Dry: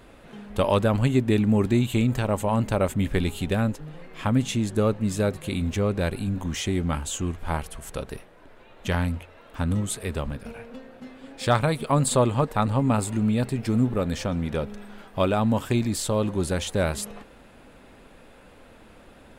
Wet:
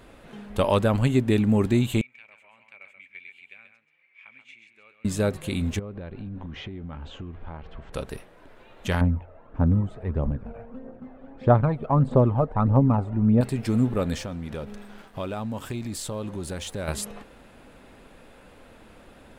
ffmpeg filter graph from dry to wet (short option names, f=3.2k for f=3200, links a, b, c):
-filter_complex "[0:a]asettb=1/sr,asplit=3[a][b][c];[a]atrim=end=2.014[d];[b]atrim=start=2.01:end=5.05,asetpts=PTS-STARTPTS,afade=t=in:d=0.004:c=qsin,afade=t=out:st=3.036:d=0.004:c=qsin,bandpass=f=2.3k:t=q:w=17,aecho=1:1:133:0.422,atrim=end_sample=134064[e];[c]atrim=start=5.046[f];[d][e]acrossfade=d=0.004:c1=hsin:c2=qsin[g];[g][f]acrossfade=d=0.004:c1=qsin:c2=hsin,asettb=1/sr,asplit=3[h][i][j];[h]atrim=end=5.794[k];[i]atrim=start=5.79:end=7.93,asetpts=PTS-STARTPTS,afade=t=in:d=0.004:c=qsin,afade=t=out:st=2.136:d=0.004:c=qsin,lowpass=f=3.9k:w=0.5412,lowpass=f=3.9k:w=1.3066,highshelf=f=2.2k:g=-10.5,acompressor=threshold=-32dB:ratio=12:attack=3.2:release=140:knee=1:detection=peak[l];[j]atrim=start=7.926[m];[k][l]acrossfade=d=0.004:c1=hsin:c2=qsin[n];[n][m]acrossfade=d=0.004:c1=qsin:c2=hsin,asettb=1/sr,asplit=3[o][p][q];[o]atrim=end=9.014[r];[p]atrim=start=9.01:end=13.41,asetpts=PTS-STARTPTS,afade=t=in:d=0.004:c=qsin,afade=t=out:st=4.396:d=0.004:c=qsin,lowpass=1k,aphaser=in_gain=1:out_gain=1:delay=1.7:decay=0.48:speed=1.6:type=triangular[s];[q]atrim=start=13.406[t];[r][s]acrossfade=d=0.004:c1=hsin:c2=qsin[u];[u][t]acrossfade=d=0.004:c1=qsin:c2=hsin,asettb=1/sr,asplit=3[v][w][x];[v]atrim=end=14.184[y];[w]atrim=start=14.18:end=16.88,asetpts=PTS-STARTPTS,afade=t=in:d=0.004:c=qsin,afade=t=out:st=2.696:d=0.004:c=qsin,acompressor=threshold=-31dB:ratio=2.5:attack=3.2:release=140:knee=1:detection=peak,aeval=exprs='sgn(val(0))*max(abs(val(0))-0.002,0)':c=same[z];[x]atrim=start=16.876[aa];[y][z]acrossfade=d=0.004:c1=hsin:c2=qsin[ab];[ab][aa]acrossfade=d=0.004:c1=qsin:c2=hsin"